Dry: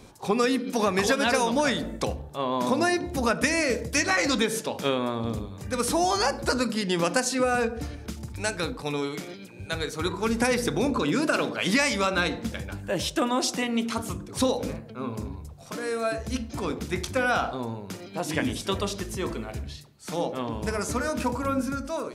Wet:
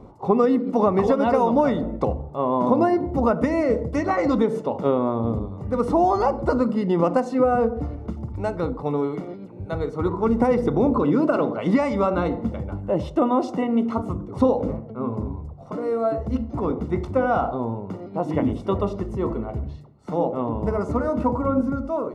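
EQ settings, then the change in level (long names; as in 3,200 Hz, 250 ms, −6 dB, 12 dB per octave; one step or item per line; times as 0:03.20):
Savitzky-Golay smoothing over 65 samples
+6.0 dB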